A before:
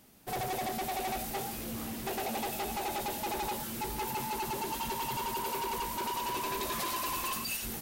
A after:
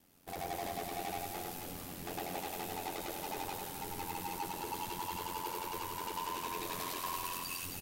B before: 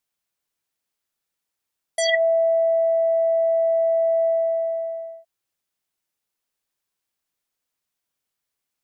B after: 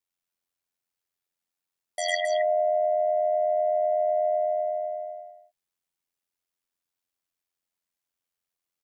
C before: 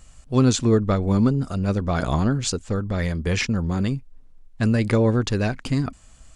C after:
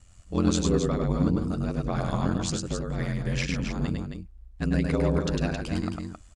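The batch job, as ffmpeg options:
-af "aeval=exprs='val(0)*sin(2*PI*44*n/s)':c=same,aecho=1:1:102|268.2:0.708|0.447,volume=0.596"

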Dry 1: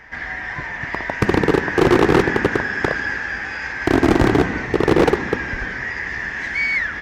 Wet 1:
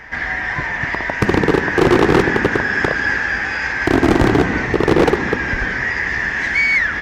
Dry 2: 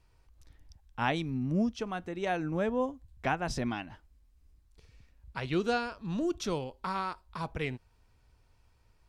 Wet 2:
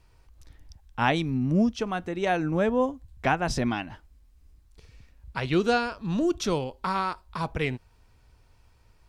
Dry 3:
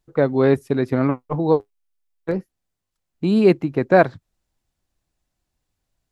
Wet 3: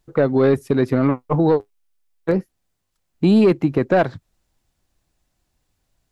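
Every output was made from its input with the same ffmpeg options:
-af "acontrast=60,alimiter=limit=0.422:level=0:latency=1:release=186"

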